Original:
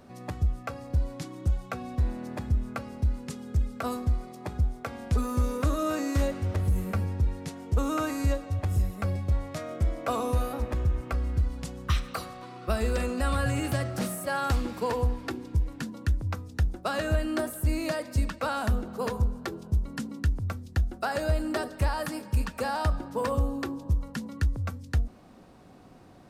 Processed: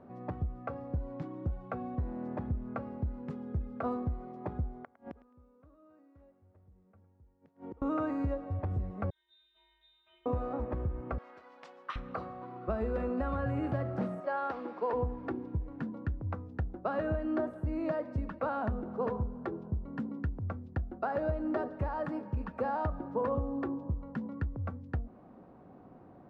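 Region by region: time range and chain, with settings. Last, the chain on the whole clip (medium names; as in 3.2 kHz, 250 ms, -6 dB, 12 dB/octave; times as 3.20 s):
4.77–7.82 s: inverted gate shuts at -30 dBFS, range -31 dB + thinning echo 107 ms, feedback 25%, high-pass 680 Hz, level -15 dB
9.10–10.26 s: comb filter that takes the minimum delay 5.3 ms + feedback comb 150 Hz, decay 0.96 s, harmonics odd, mix 100% + frequency inversion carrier 3.8 kHz
11.18–11.96 s: careless resampling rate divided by 3×, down none, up hold + band-pass 520–5800 Hz + tilt EQ +4.5 dB/octave
14.20–14.93 s: high-pass 400 Hz + resonant high shelf 7.2 kHz -8 dB, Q 1.5
whole clip: compression 2:1, threshold -27 dBFS; low-pass 1.1 kHz 12 dB/octave; bass shelf 71 Hz -12 dB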